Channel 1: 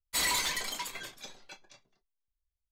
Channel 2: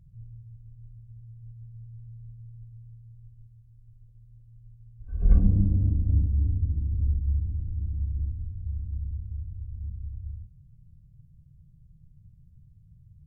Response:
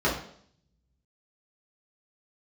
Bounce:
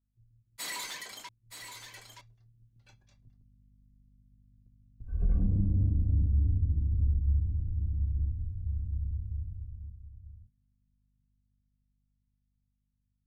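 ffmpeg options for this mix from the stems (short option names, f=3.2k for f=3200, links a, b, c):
-filter_complex "[0:a]highpass=160,equalizer=f=1.7k:w=6.3:g=3,adelay=450,volume=-9dB,asplit=3[a][b][c];[a]atrim=end=1.29,asetpts=PTS-STARTPTS,afade=t=out:st=1.286:d=0.004:c=hsin[d];[b]atrim=start=1.29:end=1.87,asetpts=PTS-STARTPTS,volume=0[e];[c]atrim=start=1.87,asetpts=PTS-STARTPTS,afade=t=in:d=0.004:c=hsin[f];[d][e][f]concat=n=3:v=0:a=1,asplit=2[g][h];[h]volume=-9.5dB[i];[1:a]agate=range=-17dB:threshold=-44dB:ratio=16:detection=peak,aeval=exprs='val(0)+0.001*(sin(2*PI*50*n/s)+sin(2*PI*2*50*n/s)/2+sin(2*PI*3*50*n/s)/3+sin(2*PI*4*50*n/s)/4+sin(2*PI*5*50*n/s)/5)':c=same,volume=-7dB,afade=t=in:st=2.64:d=0.71:silence=0.251189,afade=t=out:st=9.4:d=0.58:silence=0.281838[j];[i]aecho=0:1:923:1[k];[g][j][k]amix=inputs=3:normalize=0,dynaudnorm=f=520:g=9:m=6dB,alimiter=limit=-19.5dB:level=0:latency=1:release=56"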